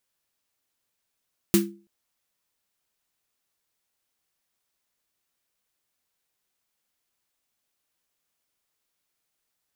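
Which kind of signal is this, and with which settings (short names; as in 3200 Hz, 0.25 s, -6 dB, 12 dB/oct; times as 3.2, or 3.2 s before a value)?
snare drum length 0.33 s, tones 200 Hz, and 340 Hz, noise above 1100 Hz, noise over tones -5 dB, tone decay 0.37 s, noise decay 0.20 s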